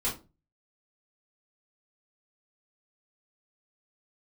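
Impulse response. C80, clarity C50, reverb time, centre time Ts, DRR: 17.0 dB, 9.5 dB, 0.30 s, 25 ms, -7.5 dB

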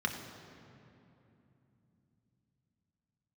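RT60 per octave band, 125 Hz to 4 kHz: 5.1 s, 4.7 s, 3.1 s, 2.7 s, 2.4 s, 1.8 s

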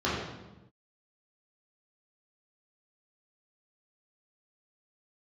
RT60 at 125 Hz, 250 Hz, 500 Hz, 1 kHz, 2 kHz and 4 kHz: 1.4 s, 1.3 s, 1.1 s, 0.95 s, 0.85 s, 0.80 s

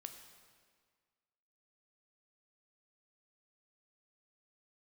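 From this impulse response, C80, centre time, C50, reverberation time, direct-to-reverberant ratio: 9.0 dB, 29 ms, 7.5 dB, 1.8 s, 6.0 dB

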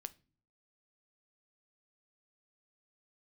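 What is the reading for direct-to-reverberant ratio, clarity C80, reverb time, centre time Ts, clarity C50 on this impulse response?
12.5 dB, 28.0 dB, no single decay rate, 2 ms, 21.5 dB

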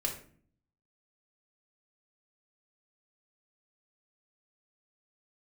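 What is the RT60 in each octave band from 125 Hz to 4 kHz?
0.90 s, 0.80 s, 0.55 s, 0.45 s, 0.40 s, 0.30 s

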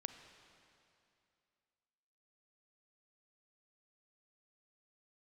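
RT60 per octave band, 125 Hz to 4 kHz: 2.6 s, 2.6 s, 2.6 s, 2.6 s, 2.5 s, 2.4 s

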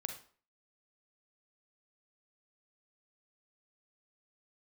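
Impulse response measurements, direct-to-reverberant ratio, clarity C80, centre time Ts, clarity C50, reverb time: 5.0 dB, 12.5 dB, 16 ms, 7.5 dB, 0.45 s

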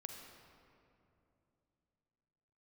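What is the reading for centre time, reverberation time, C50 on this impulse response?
69 ms, 2.9 s, 3.5 dB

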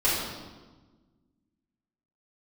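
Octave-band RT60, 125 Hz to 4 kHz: 1.9 s, 2.0 s, 1.4 s, 1.2 s, 1.0 s, 1.0 s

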